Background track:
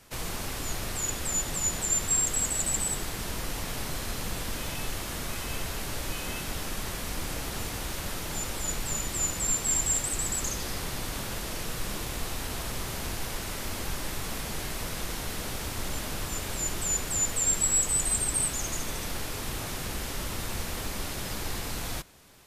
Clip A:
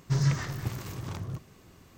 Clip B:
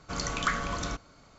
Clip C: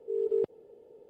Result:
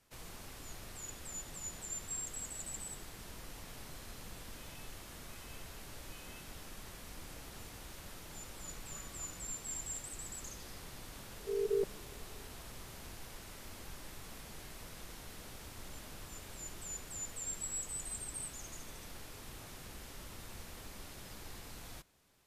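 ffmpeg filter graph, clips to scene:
-filter_complex "[0:a]volume=-15.5dB[a];[2:a]acompressor=threshold=-39dB:ratio=6:attack=3.2:release=140:knee=1:detection=peak[b];[3:a]aecho=1:1:5.2:0.83[c];[b]atrim=end=1.38,asetpts=PTS-STARTPTS,volume=-16.5dB,afade=t=in:d=0.004:c=hsin,afade=t=out:st=1.376:d=0.004:c=hsin,adelay=374850S[d];[c]atrim=end=1.09,asetpts=PTS-STARTPTS,volume=-7.5dB,afade=t=in:d=0.004:c=hsin,afade=t=out:st=1.086:d=0.004:c=hsin,adelay=11390[e];[a][d][e]amix=inputs=3:normalize=0"

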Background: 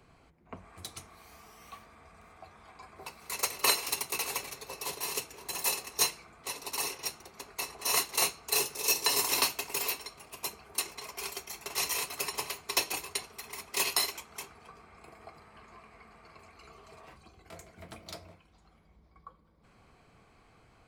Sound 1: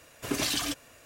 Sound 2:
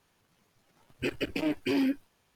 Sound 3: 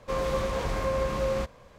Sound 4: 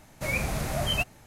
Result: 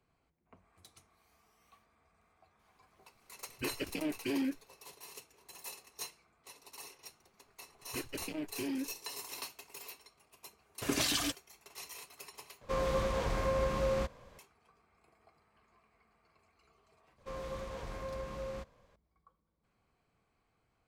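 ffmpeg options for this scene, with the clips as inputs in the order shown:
-filter_complex "[2:a]asplit=2[a][b];[3:a]asplit=2[c][d];[0:a]volume=-16dB[e];[b]lowshelf=f=130:g=5.5[f];[1:a]agate=range=-21dB:threshold=-44dB:ratio=16:release=100:detection=peak[g];[e]asplit=2[h][i];[h]atrim=end=12.614[j];[c]atrim=end=1.78,asetpts=PTS-STARTPTS,volume=-4dB[k];[i]atrim=start=14.386[l];[a]atrim=end=2.35,asetpts=PTS-STARTPTS,volume=-6.5dB,afade=t=in:d=0.004:c=hsin,afade=t=out:st=2.346:d=0.004:c=hsin,adelay=2590[m];[f]atrim=end=2.35,asetpts=PTS-STARTPTS,volume=-11dB,afade=t=in:d=0.004:c=hsin,afade=t=out:st=2.346:d=0.004:c=hsin,adelay=6920[n];[g]atrim=end=1.05,asetpts=PTS-STARTPTS,volume=-2.5dB,afade=t=in:d=0.004:c=hsin,afade=t=out:st=1.046:d=0.004:c=hsin,adelay=466578S[o];[d]atrim=end=1.78,asetpts=PTS-STARTPTS,volume=-13.5dB,afade=t=in:d=0.004:c=hsin,afade=t=out:st=1.776:d=0.004:c=hsin,adelay=17180[p];[j][k]acrossfade=d=0.004:c1=hsin:c2=hsin[q];[q][l]acrossfade=d=0.004:c1=hsin:c2=hsin[r];[r][m][n][o][p]amix=inputs=5:normalize=0"

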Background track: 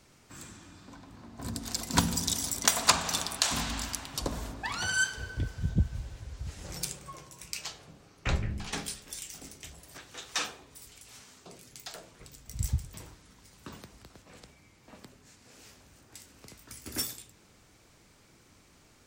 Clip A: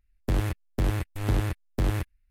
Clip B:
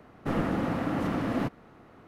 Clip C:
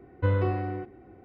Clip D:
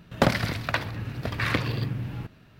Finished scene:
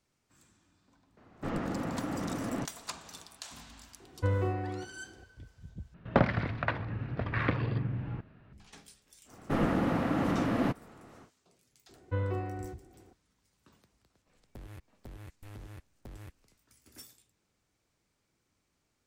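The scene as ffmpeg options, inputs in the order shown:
-filter_complex "[2:a]asplit=2[a][b];[3:a]asplit=2[c][d];[0:a]volume=-18dB[e];[a]aresample=16000,aresample=44100[f];[4:a]lowpass=1.9k[g];[1:a]acompressor=threshold=-38dB:ratio=6:attack=3.2:release=140:knee=1:detection=peak[h];[e]asplit=2[i][j];[i]atrim=end=5.944[k];[g]atrim=end=2.59,asetpts=PTS-STARTPTS,volume=-3dB[l];[j]atrim=start=8.526[m];[f]atrim=end=2.07,asetpts=PTS-STARTPTS,volume=-6dB,afade=t=in:d=0.004:c=hsin,afade=t=out:st=2.066:d=0.004:c=hsin,adelay=1170[n];[c]atrim=end=1.24,asetpts=PTS-STARTPTS,volume=-4.5dB,afade=t=in:d=0.004:c=hsin,afade=t=out:st=1.236:d=0.004:c=hsin,adelay=4000[o];[b]atrim=end=2.07,asetpts=PTS-STARTPTS,afade=t=in:d=0.1,afade=t=out:st=1.97:d=0.1,adelay=9240[p];[d]atrim=end=1.24,asetpts=PTS-STARTPTS,volume=-7.5dB,afade=t=in:d=0.004:c=hsin,afade=t=out:st=1.236:d=0.004:c=hsin,adelay=11890[q];[h]atrim=end=2.3,asetpts=PTS-STARTPTS,volume=-7dB,afade=t=in:d=0.004:c=hsin,afade=t=out:st=2.296:d=0.004:c=hsin,adelay=14270[r];[k][l]acrossfade=d=0.004:c1=hsin:c2=hsin[s];[s][m]acrossfade=d=0.004:c1=hsin:c2=hsin[t];[t][n][o][p][q][r]amix=inputs=6:normalize=0"

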